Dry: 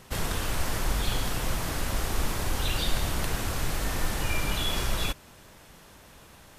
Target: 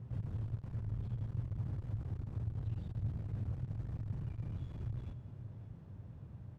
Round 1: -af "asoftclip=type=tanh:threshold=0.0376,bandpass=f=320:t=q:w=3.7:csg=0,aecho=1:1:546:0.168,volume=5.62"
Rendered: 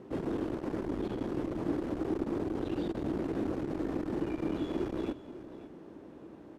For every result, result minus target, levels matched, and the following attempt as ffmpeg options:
125 Hz band -13.0 dB; saturation: distortion -5 dB
-af "asoftclip=type=tanh:threshold=0.0376,bandpass=f=110:t=q:w=3.7:csg=0,aecho=1:1:546:0.168,volume=5.62"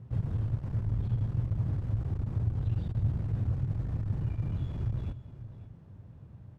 saturation: distortion -5 dB
-af "asoftclip=type=tanh:threshold=0.01,bandpass=f=110:t=q:w=3.7:csg=0,aecho=1:1:546:0.168,volume=5.62"

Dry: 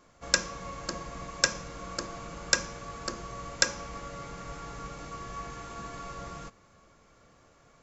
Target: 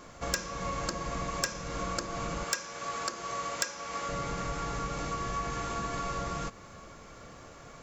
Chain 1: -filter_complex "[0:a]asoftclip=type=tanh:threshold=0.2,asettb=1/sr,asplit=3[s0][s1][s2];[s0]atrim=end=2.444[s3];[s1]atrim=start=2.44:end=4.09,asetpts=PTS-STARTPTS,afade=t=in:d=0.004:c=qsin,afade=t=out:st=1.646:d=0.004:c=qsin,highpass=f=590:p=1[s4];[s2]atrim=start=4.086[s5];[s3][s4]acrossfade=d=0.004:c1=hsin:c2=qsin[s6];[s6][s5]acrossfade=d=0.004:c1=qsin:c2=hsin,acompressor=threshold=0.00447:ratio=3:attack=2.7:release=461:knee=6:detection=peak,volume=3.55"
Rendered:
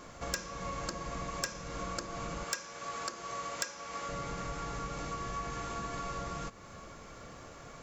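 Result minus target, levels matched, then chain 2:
compression: peak gain reduction +4.5 dB
-filter_complex "[0:a]asoftclip=type=tanh:threshold=0.2,asettb=1/sr,asplit=3[s0][s1][s2];[s0]atrim=end=2.444[s3];[s1]atrim=start=2.44:end=4.09,asetpts=PTS-STARTPTS,afade=t=in:d=0.004:c=qsin,afade=t=out:st=1.646:d=0.004:c=qsin,highpass=f=590:p=1[s4];[s2]atrim=start=4.086[s5];[s3][s4]acrossfade=d=0.004:c1=hsin:c2=qsin[s6];[s6][s5]acrossfade=d=0.004:c1=qsin:c2=hsin,acompressor=threshold=0.00944:ratio=3:attack=2.7:release=461:knee=6:detection=peak,volume=3.55"

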